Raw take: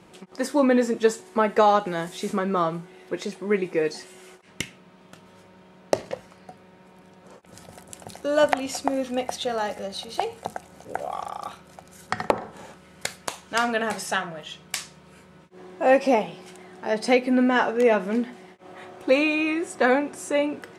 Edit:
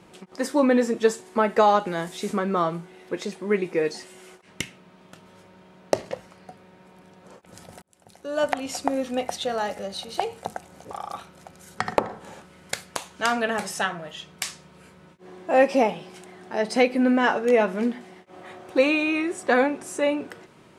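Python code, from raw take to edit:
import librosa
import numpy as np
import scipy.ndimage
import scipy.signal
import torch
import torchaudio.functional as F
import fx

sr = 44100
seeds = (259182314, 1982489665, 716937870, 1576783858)

y = fx.edit(x, sr, fx.fade_in_span(start_s=7.82, length_s=1.02),
    fx.cut(start_s=10.91, length_s=0.32), tone=tone)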